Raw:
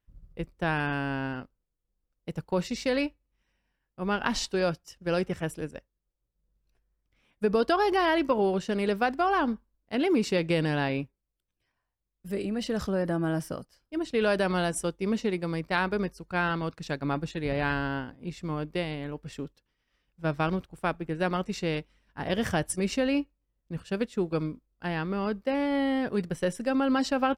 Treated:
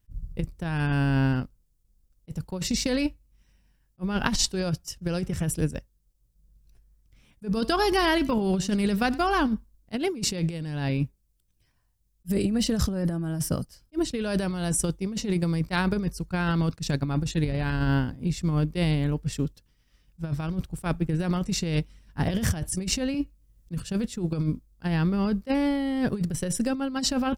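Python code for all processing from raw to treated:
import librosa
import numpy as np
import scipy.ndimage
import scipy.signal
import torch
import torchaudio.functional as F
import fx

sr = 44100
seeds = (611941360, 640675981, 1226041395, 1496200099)

y = fx.chain(x, sr, fx.peak_eq(hz=550.0, db=-4.5, octaves=1.8),
    fx.echo_single(ms=92, db=-21.0), at=(7.5, 9.53))
y = fx.chain(y, sr, fx.peak_eq(hz=810.0, db=-6.0, octaves=0.27),
    fx.band_squash(depth_pct=40), at=(23.14, 23.82))
y = fx.bass_treble(y, sr, bass_db=13, treble_db=11)
y = fx.over_compress(y, sr, threshold_db=-24.0, ratio=-0.5)
y = fx.attack_slew(y, sr, db_per_s=550.0)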